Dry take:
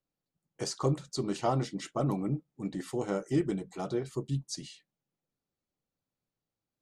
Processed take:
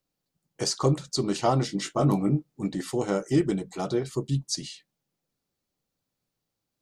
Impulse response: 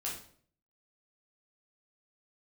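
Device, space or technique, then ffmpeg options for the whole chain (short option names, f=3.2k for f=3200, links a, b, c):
presence and air boost: -filter_complex "[0:a]asettb=1/sr,asplit=3[a][b][c];[a]atrim=end=1.674[d];[b]atrim=start=1.67:end=2.66,asetpts=PTS-STARTPTS,afade=t=in:d=0.004:c=qsin,afade=t=out:st=0.986:d=0.004:c=qsin,asplit=2[e][f];[f]adelay=20,volume=-5dB[g];[e][g]amix=inputs=2:normalize=0,atrim=end_sample=43659[h];[c]atrim=start=2.656[i];[d][h]acrossfade=d=0.004:c1=hsin:c2=qsin[j];[j][i]acrossfade=d=0.004:c1=qsin:c2=hsin,equalizer=f=4.8k:t=o:w=1:g=3.5,highshelf=f=9.5k:g=3.5,volume=5.5dB"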